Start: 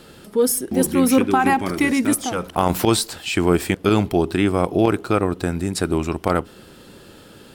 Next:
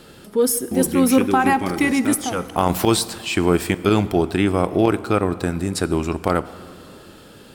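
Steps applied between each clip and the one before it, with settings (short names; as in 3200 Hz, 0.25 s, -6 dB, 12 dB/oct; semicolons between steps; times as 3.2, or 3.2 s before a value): plate-style reverb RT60 2.5 s, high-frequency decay 0.6×, DRR 15 dB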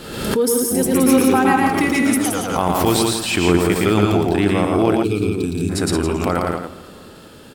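loudspeakers at several distances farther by 39 m -3 dB, 59 m -4 dB, 95 m -10 dB; spectral gain 5.03–5.69, 460–2200 Hz -19 dB; backwards sustainer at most 56 dB/s; gain -1 dB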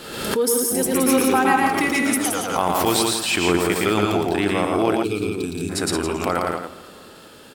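low shelf 280 Hz -10 dB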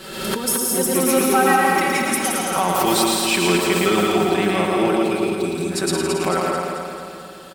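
comb 5.3 ms, depth 84%; on a send: feedback echo 0.22 s, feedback 55%, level -5 dB; on the sum: gain -2 dB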